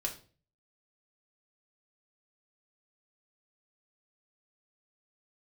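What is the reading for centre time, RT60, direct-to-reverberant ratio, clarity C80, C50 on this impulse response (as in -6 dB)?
14 ms, 0.40 s, 0.0 dB, 16.5 dB, 11.0 dB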